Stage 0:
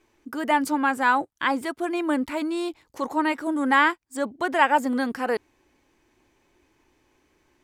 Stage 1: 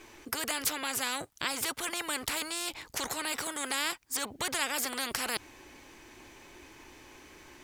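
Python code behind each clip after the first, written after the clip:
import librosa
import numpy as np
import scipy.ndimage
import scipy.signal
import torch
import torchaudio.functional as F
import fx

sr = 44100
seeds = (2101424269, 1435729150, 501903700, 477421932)

y = fx.tilt_shelf(x, sr, db=-3.0, hz=970.0)
y = fx.spectral_comp(y, sr, ratio=4.0)
y = y * librosa.db_to_amplitude(-6.5)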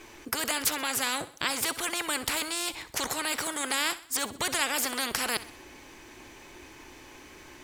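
y = fx.echo_feedback(x, sr, ms=64, feedback_pct=46, wet_db=-16.0)
y = y * librosa.db_to_amplitude(3.5)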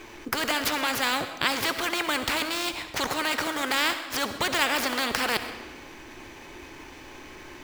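y = scipy.signal.medfilt(x, 5)
y = fx.rev_freeverb(y, sr, rt60_s=1.3, hf_ratio=0.8, predelay_ms=50, drr_db=10.0)
y = y * librosa.db_to_amplitude(5.0)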